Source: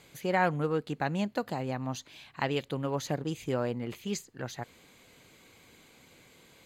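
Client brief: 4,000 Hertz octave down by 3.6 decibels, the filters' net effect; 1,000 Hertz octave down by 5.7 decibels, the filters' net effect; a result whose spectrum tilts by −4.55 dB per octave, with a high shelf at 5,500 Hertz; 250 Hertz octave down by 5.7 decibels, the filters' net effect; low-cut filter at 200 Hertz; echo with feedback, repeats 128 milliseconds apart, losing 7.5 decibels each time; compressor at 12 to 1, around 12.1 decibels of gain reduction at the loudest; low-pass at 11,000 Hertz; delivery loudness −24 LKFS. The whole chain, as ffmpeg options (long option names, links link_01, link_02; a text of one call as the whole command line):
ffmpeg -i in.wav -af "highpass=200,lowpass=11000,equalizer=frequency=250:width_type=o:gain=-4.5,equalizer=frequency=1000:width_type=o:gain=-7.5,equalizer=frequency=4000:width_type=o:gain=-3,highshelf=frequency=5500:gain=-3.5,acompressor=threshold=-38dB:ratio=12,aecho=1:1:128|256|384|512|640:0.422|0.177|0.0744|0.0312|0.0131,volume=20dB" out.wav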